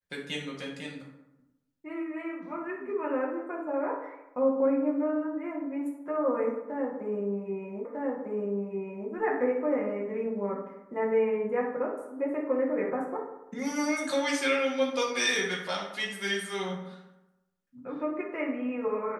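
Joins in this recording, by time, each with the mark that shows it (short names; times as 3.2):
7.85 repeat of the last 1.25 s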